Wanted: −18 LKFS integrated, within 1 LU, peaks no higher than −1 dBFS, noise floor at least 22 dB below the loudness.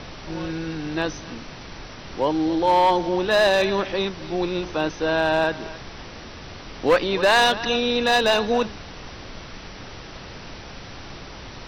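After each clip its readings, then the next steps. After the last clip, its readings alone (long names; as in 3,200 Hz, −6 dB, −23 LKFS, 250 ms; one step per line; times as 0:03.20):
share of clipped samples 0.6%; peaks flattened at −11.5 dBFS; background noise floor −39 dBFS; target noise floor −44 dBFS; integrated loudness −21.5 LKFS; sample peak −11.5 dBFS; target loudness −18.0 LKFS
→ clipped peaks rebuilt −11.5 dBFS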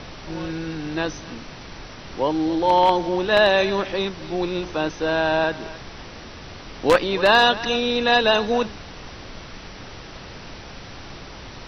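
share of clipped samples 0.0%; background noise floor −39 dBFS; target noise floor −43 dBFS
→ noise reduction from a noise print 6 dB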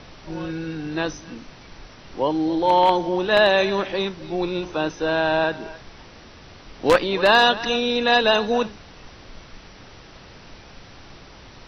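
background noise floor −45 dBFS; integrated loudness −20.5 LKFS; sample peak −2.5 dBFS; target loudness −18.0 LKFS
→ level +2.5 dB
brickwall limiter −1 dBFS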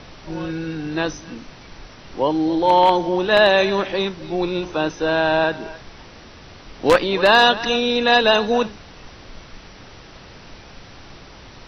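integrated loudness −18.0 LKFS; sample peak −1.0 dBFS; background noise floor −43 dBFS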